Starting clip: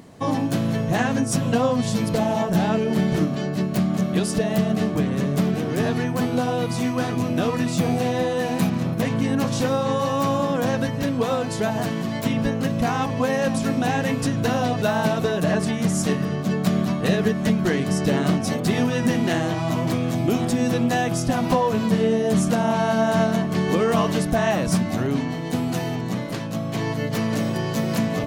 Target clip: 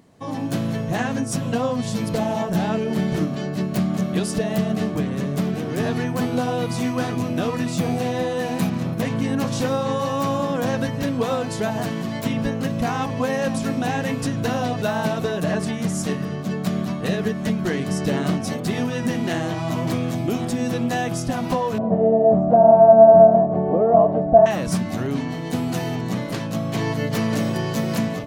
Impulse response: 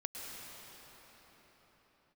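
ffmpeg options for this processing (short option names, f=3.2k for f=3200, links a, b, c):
-filter_complex "[0:a]dynaudnorm=f=270:g=3:m=12dB,asettb=1/sr,asplit=3[a][b][c];[a]atrim=end=21.784[d];[b]atrim=start=21.78:end=24.46,asetpts=PTS-STARTPTS,afade=t=in:d=0.004:c=qsin,afade=t=out:st=2.676:d=0.004:c=qsin,lowpass=f=680:t=q:w=6[e];[c]atrim=start=24.456[f];[d][e]acrossfade=d=0.004:c1=hsin:c2=qsin[g];[g][f]acrossfade=d=0.004:c1=qsin:c2=hsin,volume=-9dB"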